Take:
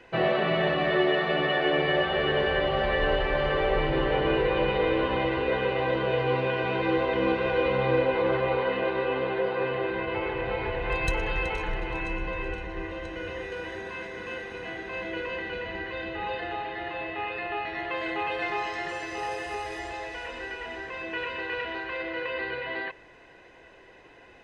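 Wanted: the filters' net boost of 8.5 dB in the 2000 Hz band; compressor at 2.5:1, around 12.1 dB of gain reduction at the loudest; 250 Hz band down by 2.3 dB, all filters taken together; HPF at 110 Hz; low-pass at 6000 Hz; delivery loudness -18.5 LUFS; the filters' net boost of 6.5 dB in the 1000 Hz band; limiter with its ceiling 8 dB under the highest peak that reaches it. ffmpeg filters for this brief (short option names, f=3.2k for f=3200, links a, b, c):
-af "highpass=110,lowpass=6k,equalizer=f=250:t=o:g=-4.5,equalizer=f=1k:t=o:g=6.5,equalizer=f=2k:t=o:g=8.5,acompressor=threshold=-36dB:ratio=2.5,volume=17dB,alimiter=limit=-10.5dB:level=0:latency=1"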